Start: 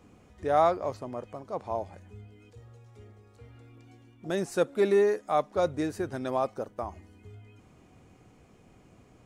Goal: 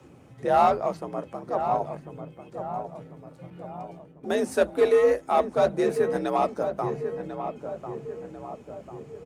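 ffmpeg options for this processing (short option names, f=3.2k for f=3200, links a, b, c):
-filter_complex "[0:a]asettb=1/sr,asplit=3[a][b][c];[a]atrim=end=3.504[d];[b]atrim=start=3.5:end=4.61,asetpts=PTS-STARTPTS,afade=t=in:d=0.004:c=qsin,afade=t=out:st=1.106:d=0.004:c=qsin,agate=range=-55dB:threshold=-53dB:ratio=16:detection=peak[e];[c]atrim=start=4.606[f];[d][e]acrossfade=d=0.004:c1=hsin:c2=qsin[g];[g][f]acrossfade=d=0.004:c1=qsin:c2=hsin,asplit=2[h][i];[i]aeval=exprs='0.0794*(abs(mod(val(0)/0.0794+3,4)-2)-1)':c=same,volume=-10dB[j];[h][j]amix=inputs=2:normalize=0,lowshelf=f=86:g=6.5,bandreject=f=50:t=h:w=6,bandreject=f=100:t=h:w=6,bandreject=f=150:t=h:w=6,bandreject=f=200:t=h:w=6,bandreject=f=250:t=h:w=6,afreqshift=57,flanger=delay=2.1:depth=7.6:regen=-61:speed=1.9:shape=sinusoidal,asplit=2[k][l];[l]adelay=1045,lowpass=f=1.4k:p=1,volume=-8dB,asplit=2[m][n];[n]adelay=1045,lowpass=f=1.4k:p=1,volume=0.54,asplit=2[o][p];[p]adelay=1045,lowpass=f=1.4k:p=1,volume=0.54,asplit=2[q][r];[r]adelay=1045,lowpass=f=1.4k:p=1,volume=0.54,asplit=2[s][t];[t]adelay=1045,lowpass=f=1.4k:p=1,volume=0.54,asplit=2[u][v];[v]adelay=1045,lowpass=f=1.4k:p=1,volume=0.54[w];[m][o][q][s][u][w]amix=inputs=6:normalize=0[x];[k][x]amix=inputs=2:normalize=0,volume=6.5dB" -ar 48000 -c:a libopus -b:a 48k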